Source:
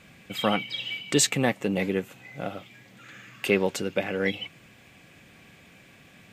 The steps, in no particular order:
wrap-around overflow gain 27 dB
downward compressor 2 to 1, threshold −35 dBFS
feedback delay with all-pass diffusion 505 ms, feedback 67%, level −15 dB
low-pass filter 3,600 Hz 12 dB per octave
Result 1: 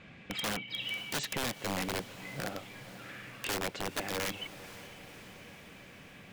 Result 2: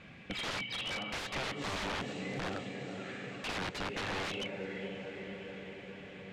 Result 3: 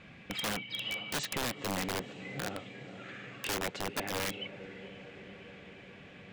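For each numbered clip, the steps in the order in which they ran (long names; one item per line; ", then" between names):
low-pass filter, then downward compressor, then wrap-around overflow, then feedback delay with all-pass diffusion
feedback delay with all-pass diffusion, then wrap-around overflow, then low-pass filter, then downward compressor
low-pass filter, then downward compressor, then feedback delay with all-pass diffusion, then wrap-around overflow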